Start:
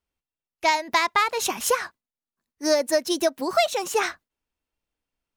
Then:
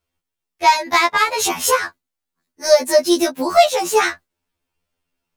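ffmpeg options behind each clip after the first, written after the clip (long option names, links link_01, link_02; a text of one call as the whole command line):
ffmpeg -i in.wav -af "acontrast=81,afftfilt=real='re*2*eq(mod(b,4),0)':imag='im*2*eq(mod(b,4),0)':win_size=2048:overlap=0.75,volume=2.5dB" out.wav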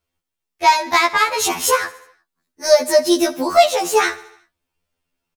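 ffmpeg -i in.wav -af "aecho=1:1:72|144|216|288|360:0.112|0.064|0.0365|0.0208|0.0118" out.wav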